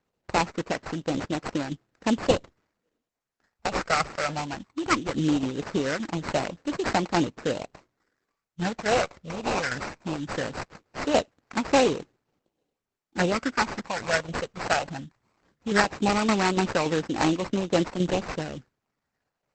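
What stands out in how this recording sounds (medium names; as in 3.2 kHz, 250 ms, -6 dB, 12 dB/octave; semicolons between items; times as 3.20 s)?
tremolo saw down 3.5 Hz, depth 55%; phasing stages 12, 0.19 Hz, lowest notch 300–4600 Hz; aliases and images of a low sample rate 3.4 kHz, jitter 20%; Opus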